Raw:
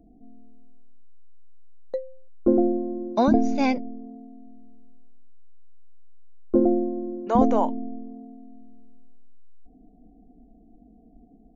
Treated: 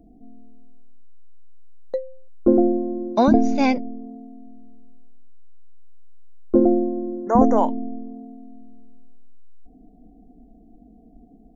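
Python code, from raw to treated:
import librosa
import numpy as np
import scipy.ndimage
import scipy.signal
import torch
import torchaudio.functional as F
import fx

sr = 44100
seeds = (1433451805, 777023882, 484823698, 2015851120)

y = fx.spec_erase(x, sr, start_s=6.72, length_s=0.85, low_hz=2100.0, high_hz=5200.0)
y = F.gain(torch.from_numpy(y), 3.5).numpy()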